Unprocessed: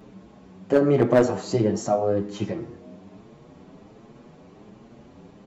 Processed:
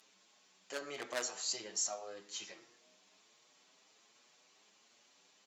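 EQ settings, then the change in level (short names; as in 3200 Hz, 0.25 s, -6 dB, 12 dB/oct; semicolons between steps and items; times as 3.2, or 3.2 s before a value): band-pass 6500 Hz, Q 0.65; tilt +2.5 dB/oct; -3.5 dB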